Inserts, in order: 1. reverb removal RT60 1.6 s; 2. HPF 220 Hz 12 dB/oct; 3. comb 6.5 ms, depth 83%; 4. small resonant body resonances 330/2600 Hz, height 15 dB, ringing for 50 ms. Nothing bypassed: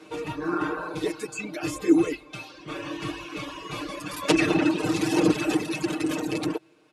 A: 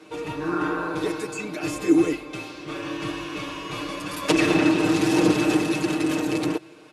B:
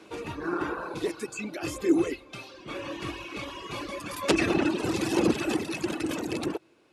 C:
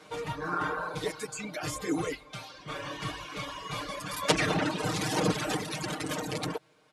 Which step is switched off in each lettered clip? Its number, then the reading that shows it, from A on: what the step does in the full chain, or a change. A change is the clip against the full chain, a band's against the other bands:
1, loudness change +3.0 LU; 3, loudness change -3.0 LU; 4, 250 Hz band -10.0 dB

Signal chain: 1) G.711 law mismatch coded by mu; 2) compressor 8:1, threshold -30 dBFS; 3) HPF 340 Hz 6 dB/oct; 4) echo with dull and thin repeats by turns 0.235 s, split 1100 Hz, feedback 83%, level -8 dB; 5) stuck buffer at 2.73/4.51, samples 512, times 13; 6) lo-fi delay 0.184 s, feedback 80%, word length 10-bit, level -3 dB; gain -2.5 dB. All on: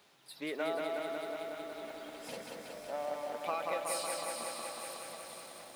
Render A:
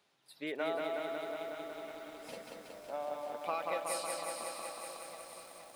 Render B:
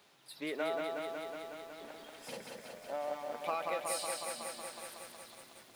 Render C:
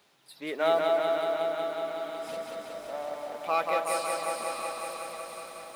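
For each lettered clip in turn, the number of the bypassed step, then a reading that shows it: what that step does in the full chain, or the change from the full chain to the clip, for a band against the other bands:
1, distortion -21 dB; 4, momentary loudness spread change +3 LU; 2, mean gain reduction 1.5 dB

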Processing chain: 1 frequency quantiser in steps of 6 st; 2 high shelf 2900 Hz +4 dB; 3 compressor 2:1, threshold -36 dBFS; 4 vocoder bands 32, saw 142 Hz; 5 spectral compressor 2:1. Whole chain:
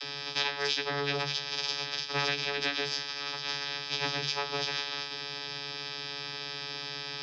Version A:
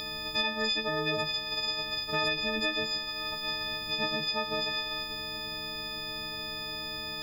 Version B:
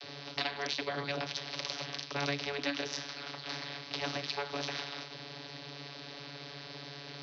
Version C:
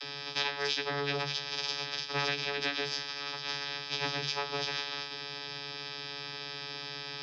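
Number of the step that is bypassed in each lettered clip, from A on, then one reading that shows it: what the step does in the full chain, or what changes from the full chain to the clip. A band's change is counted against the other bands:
4, 8 kHz band -7.5 dB; 1, crest factor change +3.0 dB; 2, 8 kHz band -2.0 dB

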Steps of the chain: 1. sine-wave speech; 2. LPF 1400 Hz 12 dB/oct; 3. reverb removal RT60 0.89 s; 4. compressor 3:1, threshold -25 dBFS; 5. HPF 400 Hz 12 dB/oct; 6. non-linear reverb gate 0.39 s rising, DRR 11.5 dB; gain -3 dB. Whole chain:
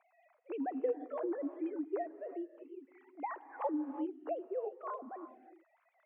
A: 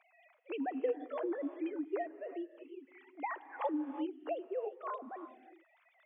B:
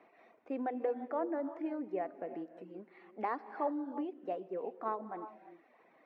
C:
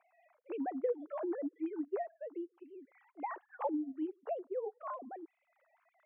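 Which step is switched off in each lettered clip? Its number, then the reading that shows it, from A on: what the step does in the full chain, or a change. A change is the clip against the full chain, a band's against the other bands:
2, 2 kHz band +6.0 dB; 1, 2 kHz band +4.0 dB; 6, momentary loudness spread change +1 LU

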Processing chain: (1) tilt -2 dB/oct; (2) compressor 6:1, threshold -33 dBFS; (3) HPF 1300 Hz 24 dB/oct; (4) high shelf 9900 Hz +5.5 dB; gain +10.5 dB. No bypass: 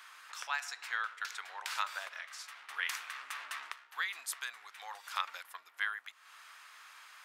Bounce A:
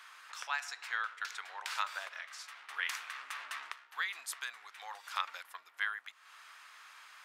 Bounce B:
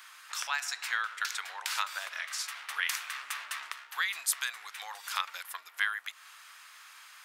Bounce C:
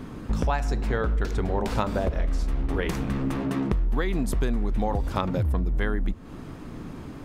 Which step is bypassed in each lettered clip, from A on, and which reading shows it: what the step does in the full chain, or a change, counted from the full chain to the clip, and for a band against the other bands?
4, 8 kHz band -2.0 dB; 1, 8 kHz band +6.0 dB; 3, 500 Hz band +30.0 dB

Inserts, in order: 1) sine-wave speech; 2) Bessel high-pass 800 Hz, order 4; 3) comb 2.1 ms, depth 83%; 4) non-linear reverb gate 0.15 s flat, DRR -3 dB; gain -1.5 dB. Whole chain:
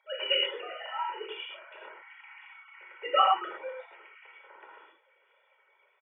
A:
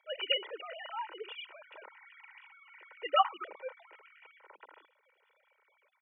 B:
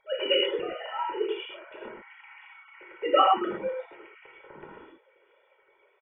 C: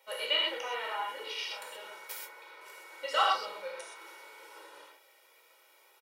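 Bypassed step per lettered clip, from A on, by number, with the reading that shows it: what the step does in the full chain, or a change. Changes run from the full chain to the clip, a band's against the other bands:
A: 4, loudness change -5.0 LU; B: 2, crest factor change -2.0 dB; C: 1, momentary loudness spread change -3 LU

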